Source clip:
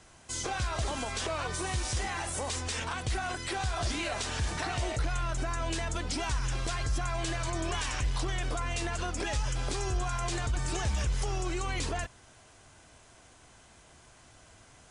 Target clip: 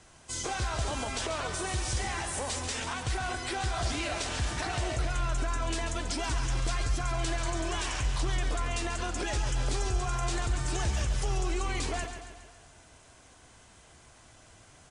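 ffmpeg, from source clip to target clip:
-filter_complex "[0:a]asplit=2[a][b];[b]aecho=0:1:138|276|414|552|690|828:0.376|0.199|0.106|0.056|0.0297|0.0157[c];[a][c]amix=inputs=2:normalize=0" -ar 48000 -c:a libvorbis -b:a 64k

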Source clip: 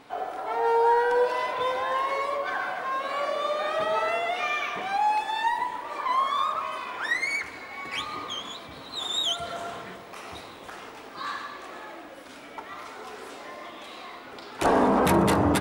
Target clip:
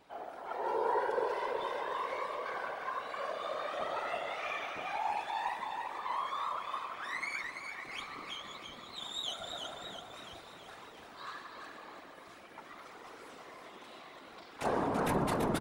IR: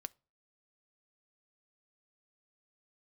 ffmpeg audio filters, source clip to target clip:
-af "aecho=1:1:335|670|1005|1340|1675|2010|2345:0.531|0.287|0.155|0.0836|0.0451|0.0244|0.0132,afftfilt=real='hypot(re,im)*cos(2*PI*random(0))':imag='hypot(re,im)*sin(2*PI*random(1))':win_size=512:overlap=0.75,volume=-5.5dB"

